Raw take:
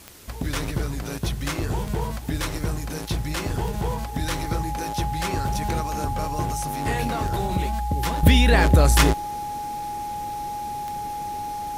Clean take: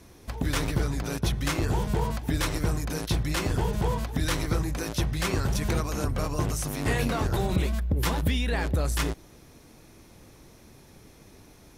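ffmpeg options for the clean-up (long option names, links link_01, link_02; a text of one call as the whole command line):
ffmpeg -i in.wav -af "adeclick=threshold=4,bandreject=frequency=830:width=30,afwtdn=0.0045,asetnsamples=nb_out_samples=441:pad=0,asendcmd='8.23 volume volume -10.5dB',volume=0dB" out.wav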